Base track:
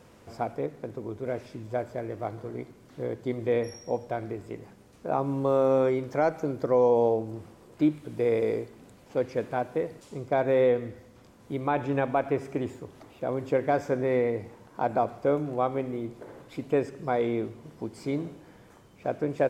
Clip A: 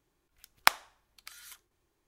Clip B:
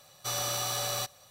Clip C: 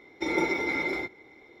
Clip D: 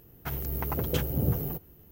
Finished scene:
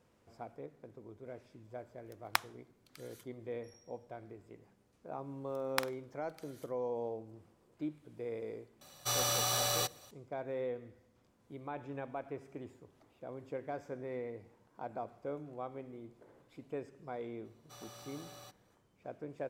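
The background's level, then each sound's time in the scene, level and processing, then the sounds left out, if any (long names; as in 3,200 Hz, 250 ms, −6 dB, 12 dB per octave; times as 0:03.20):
base track −16 dB
0:01.68: mix in A −9.5 dB
0:05.11: mix in A −12 dB + flutter between parallel walls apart 8.4 metres, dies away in 0.22 s
0:08.81: mix in B −0.5 dB
0:17.45: mix in B −18 dB + high-shelf EQ 3,000 Hz −7 dB
not used: C, D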